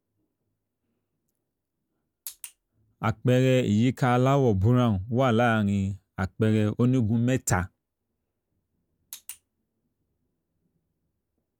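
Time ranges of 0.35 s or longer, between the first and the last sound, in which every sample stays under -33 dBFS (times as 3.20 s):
2.46–3.02 s
7.66–9.13 s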